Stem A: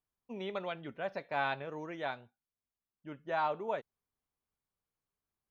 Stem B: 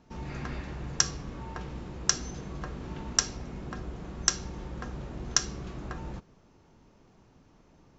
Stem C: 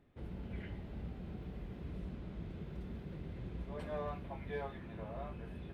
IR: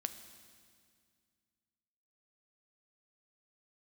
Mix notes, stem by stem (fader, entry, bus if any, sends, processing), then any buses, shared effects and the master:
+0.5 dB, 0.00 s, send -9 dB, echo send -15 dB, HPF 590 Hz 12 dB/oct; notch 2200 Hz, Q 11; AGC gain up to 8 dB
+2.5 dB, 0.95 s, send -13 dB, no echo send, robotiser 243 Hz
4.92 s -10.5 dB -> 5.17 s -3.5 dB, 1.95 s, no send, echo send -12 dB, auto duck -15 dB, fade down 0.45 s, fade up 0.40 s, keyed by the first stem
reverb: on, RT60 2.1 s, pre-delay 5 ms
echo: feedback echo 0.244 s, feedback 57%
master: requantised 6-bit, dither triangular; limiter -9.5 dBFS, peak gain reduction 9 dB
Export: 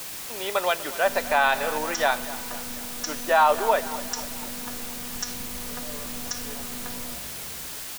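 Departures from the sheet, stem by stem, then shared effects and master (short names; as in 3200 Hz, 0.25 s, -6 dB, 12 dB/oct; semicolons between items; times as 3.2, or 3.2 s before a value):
stem A +0.5 dB -> +7.5 dB; stem B: send off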